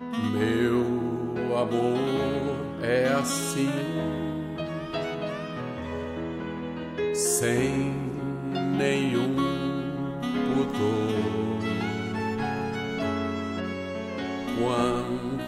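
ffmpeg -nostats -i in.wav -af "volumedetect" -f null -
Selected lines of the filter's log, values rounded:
mean_volume: -27.3 dB
max_volume: -11.9 dB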